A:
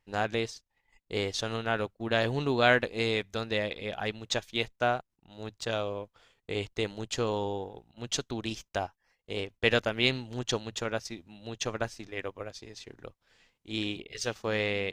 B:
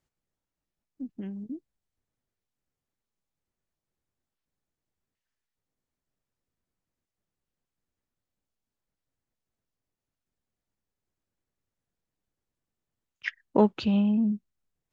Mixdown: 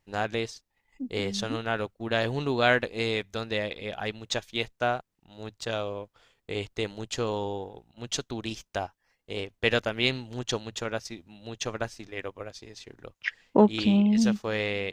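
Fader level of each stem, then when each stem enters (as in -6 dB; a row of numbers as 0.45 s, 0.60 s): +0.5 dB, +2.0 dB; 0.00 s, 0.00 s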